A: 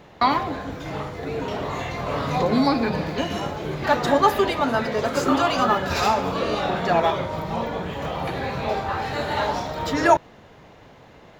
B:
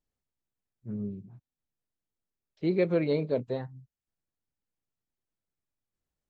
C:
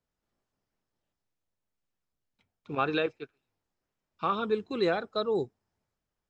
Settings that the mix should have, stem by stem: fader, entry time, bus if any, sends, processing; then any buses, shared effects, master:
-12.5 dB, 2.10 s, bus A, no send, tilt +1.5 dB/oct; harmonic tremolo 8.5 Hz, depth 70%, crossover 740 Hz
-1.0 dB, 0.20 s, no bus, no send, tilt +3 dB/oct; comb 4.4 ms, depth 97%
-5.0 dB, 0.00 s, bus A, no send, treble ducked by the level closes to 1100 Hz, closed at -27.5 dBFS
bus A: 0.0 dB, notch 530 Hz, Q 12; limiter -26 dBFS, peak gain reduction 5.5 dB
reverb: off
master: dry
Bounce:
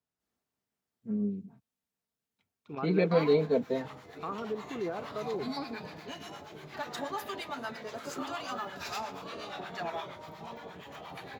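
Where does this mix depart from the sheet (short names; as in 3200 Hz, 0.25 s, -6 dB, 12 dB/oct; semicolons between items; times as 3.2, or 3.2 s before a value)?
stem A: entry 2.10 s -> 2.90 s; stem B: missing tilt +3 dB/oct; master: extra HPF 91 Hz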